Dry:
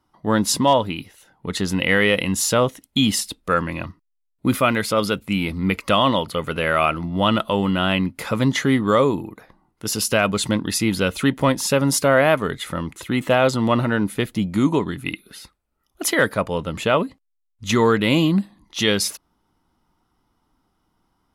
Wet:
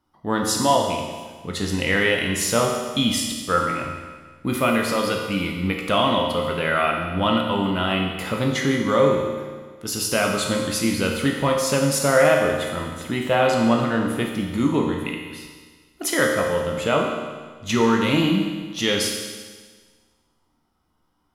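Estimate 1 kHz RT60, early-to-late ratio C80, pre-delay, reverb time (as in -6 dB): 1.5 s, 4.5 dB, 13 ms, 1.5 s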